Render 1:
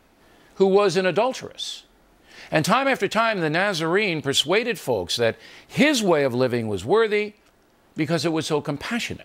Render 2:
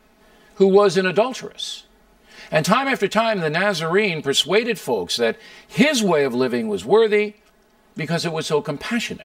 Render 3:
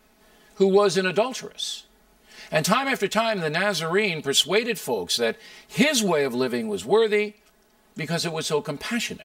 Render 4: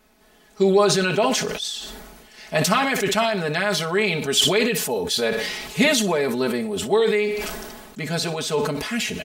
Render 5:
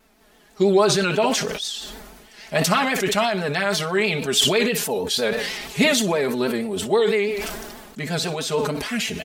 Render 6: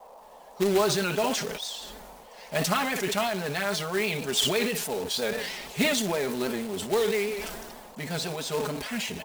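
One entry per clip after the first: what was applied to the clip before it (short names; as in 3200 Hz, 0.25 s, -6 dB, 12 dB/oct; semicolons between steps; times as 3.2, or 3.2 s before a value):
comb 4.7 ms, depth 97%; gain -1 dB
high shelf 4300 Hz +7.5 dB; gain -4.5 dB
feedback echo 60 ms, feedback 35%, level -16 dB; sustainer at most 35 dB/s
vibrato 6.2 Hz 80 cents
companded quantiser 4-bit; band noise 460–1000 Hz -43 dBFS; gain -7 dB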